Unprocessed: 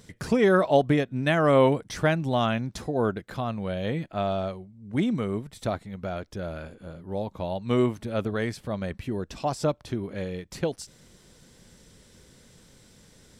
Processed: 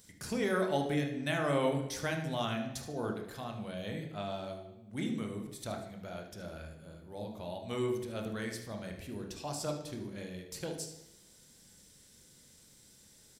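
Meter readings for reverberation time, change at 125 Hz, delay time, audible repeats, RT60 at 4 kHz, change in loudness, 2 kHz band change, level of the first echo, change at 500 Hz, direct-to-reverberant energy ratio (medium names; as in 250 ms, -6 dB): 0.90 s, -10.5 dB, 75 ms, 1, 0.85 s, -10.0 dB, -8.0 dB, -12.0 dB, -11.0 dB, 2.5 dB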